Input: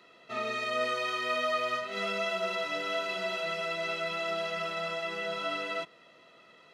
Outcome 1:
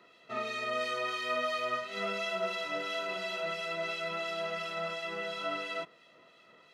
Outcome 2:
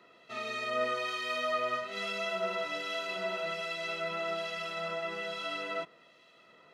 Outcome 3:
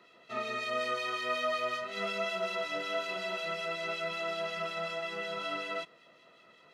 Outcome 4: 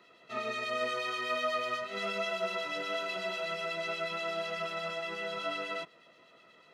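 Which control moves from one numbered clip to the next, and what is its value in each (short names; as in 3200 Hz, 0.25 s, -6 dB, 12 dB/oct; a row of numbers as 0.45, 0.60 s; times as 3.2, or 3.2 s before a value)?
harmonic tremolo, rate: 2.9, 1.2, 5.4, 8.2 Hz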